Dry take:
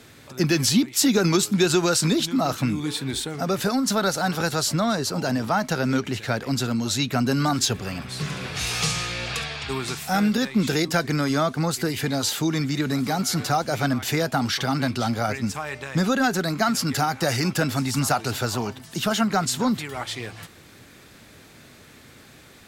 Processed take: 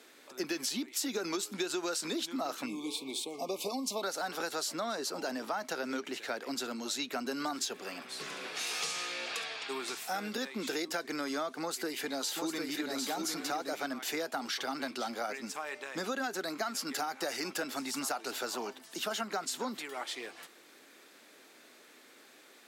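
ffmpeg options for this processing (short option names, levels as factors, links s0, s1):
-filter_complex "[0:a]asettb=1/sr,asplit=3[s0][s1][s2];[s0]atrim=end=2.664[s3];[s1]atrim=start=2.66:end=4.03,asetpts=PTS-STARTPTS,afade=t=in:d=0.004:c=qsin,afade=t=out:st=1.366:d=0.004:c=qsin,asuperstop=centerf=1600:order=20:qfactor=1.7[s4];[s2]atrim=start=4.026[s5];[s3][s4]acrossfade=d=0.004:c1=hsin:c2=qsin[s6];[s6][s5]acrossfade=d=0.004:c1=qsin:c2=hsin,asettb=1/sr,asplit=3[s7][s8][s9];[s7]atrim=end=11.614[s10];[s8]atrim=start=11.61:end=13.73,asetpts=PTS-STARTPTS,afade=t=in:d=0.004:c=qsin,afade=t=out:st=2.116:d=0.004:c=qsin,aecho=1:1:752:0.631,atrim=end_sample=93492[s11];[s9]atrim=start=13.726[s12];[s10][s11]acrossfade=d=0.004:c1=hsin:c2=qsin[s13];[s13][s12]acrossfade=d=0.004:c1=qsin:c2=hsin,highpass=f=290:w=0.5412,highpass=f=290:w=1.3066,acompressor=threshold=0.0631:ratio=5,volume=0.422"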